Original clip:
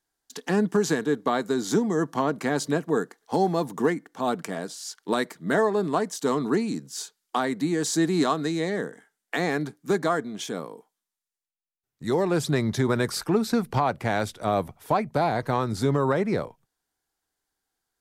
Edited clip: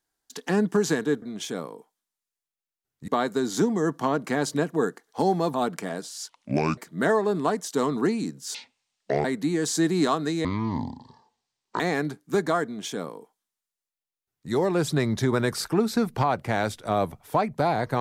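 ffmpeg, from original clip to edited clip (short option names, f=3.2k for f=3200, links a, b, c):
-filter_complex "[0:a]asplit=10[a][b][c][d][e][f][g][h][i][j];[a]atrim=end=1.222[k];[b]atrim=start=10.208:end=12.072[l];[c]atrim=start=1.218:end=3.682[m];[d]atrim=start=4.198:end=4.954[n];[e]atrim=start=4.95:end=5.26,asetpts=PTS-STARTPTS,asetrate=28224,aresample=44100[o];[f]atrim=start=5.256:end=7.034[p];[g]atrim=start=7.03:end=7.43,asetpts=PTS-STARTPTS,asetrate=25137,aresample=44100,atrim=end_sample=30947,asetpts=PTS-STARTPTS[q];[h]atrim=start=7.426:end=8.634[r];[i]atrim=start=8.63:end=9.36,asetpts=PTS-STARTPTS,asetrate=23814,aresample=44100[s];[j]atrim=start=9.356[t];[k][l]acrossfade=d=0.004:c1=hsin:c2=hsin[u];[u][m]acrossfade=d=0.004:c1=hsin:c2=hsin[v];[v][n]acrossfade=d=0.004:c1=hsin:c2=hsin[w];[w][o]acrossfade=d=0.004:c1=hsin:c2=hsin[x];[x][p]acrossfade=d=0.004:c1=hsin:c2=hsin[y];[y][q]acrossfade=d=0.004:c1=hsin:c2=hsin[z];[z][r]acrossfade=d=0.004:c1=hsin:c2=hsin[aa];[aa][s]acrossfade=d=0.004:c1=hsin:c2=hsin[ab];[ab][t]acrossfade=d=0.004:c1=hsin:c2=hsin"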